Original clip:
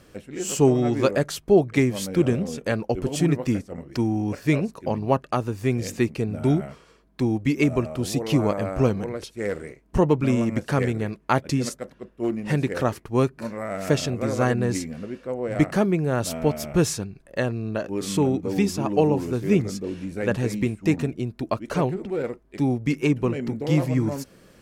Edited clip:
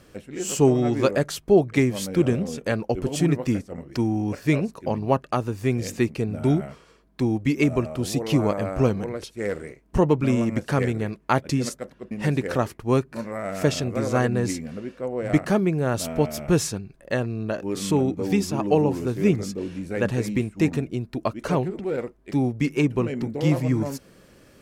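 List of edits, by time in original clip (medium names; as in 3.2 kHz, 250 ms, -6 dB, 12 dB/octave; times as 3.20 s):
12.11–12.37 s: delete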